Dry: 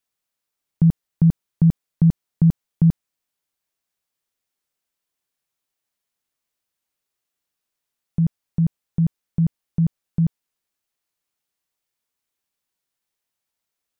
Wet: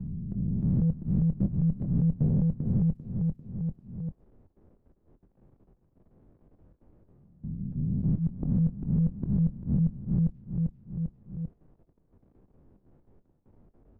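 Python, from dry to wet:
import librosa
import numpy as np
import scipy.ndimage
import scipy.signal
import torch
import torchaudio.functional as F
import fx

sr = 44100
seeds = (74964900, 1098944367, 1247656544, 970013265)

y = fx.spec_swells(x, sr, rise_s=0.79)
y = fx.env_lowpass(y, sr, base_hz=360.0, full_db=-15.0)
y = fx.tilt_eq(y, sr, slope=-2.0)
y = fx.level_steps(y, sr, step_db=23)
y = fx.auto_swell(y, sr, attack_ms=290.0)
y = 10.0 ** (-20.5 / 20.0) * np.tanh(y / 10.0 ** (-20.5 / 20.0))
y = fx.chorus_voices(y, sr, voices=6, hz=0.24, base_ms=23, depth_ms=3.0, mix_pct=20)
y = fx.echo_feedback(y, sr, ms=395, feedback_pct=21, wet_db=-11.0)
y = fx.band_squash(y, sr, depth_pct=100)
y = y * 10.0 ** (6.0 / 20.0)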